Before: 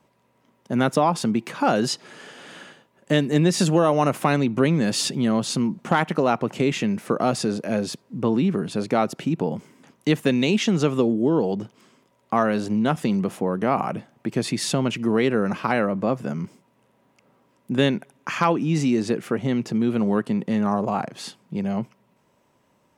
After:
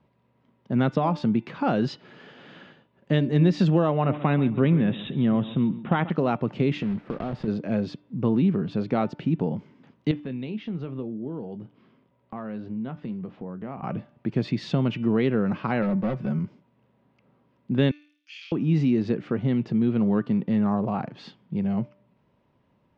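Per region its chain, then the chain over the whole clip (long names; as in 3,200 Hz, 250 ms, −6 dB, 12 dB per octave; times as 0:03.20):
0:03.90–0:06.10: linear-phase brick-wall low-pass 3,900 Hz + repeating echo 136 ms, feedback 23%, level −15.5 dB
0:06.82–0:07.48: one scale factor per block 3 bits + parametric band 6,300 Hz −13.5 dB 2.3 octaves + downward compressor 4 to 1, threshold −23 dBFS
0:10.11–0:13.83: downward compressor 1.5 to 1, threshold −47 dBFS + high-frequency loss of the air 170 metres + double-tracking delay 23 ms −13 dB
0:15.82–0:16.39: gain into a clipping stage and back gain 20.5 dB + comb filter 5.4 ms, depth 49% + bad sample-rate conversion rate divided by 3×, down filtered, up zero stuff
0:17.91–0:18.52: Butterworth high-pass 2,800 Hz + flutter between parallel walls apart 4.6 metres, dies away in 0.52 s
whole clip: low-pass filter 4,200 Hz 24 dB per octave; low-shelf EQ 240 Hz +11.5 dB; hum removal 295.8 Hz, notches 12; level −6.5 dB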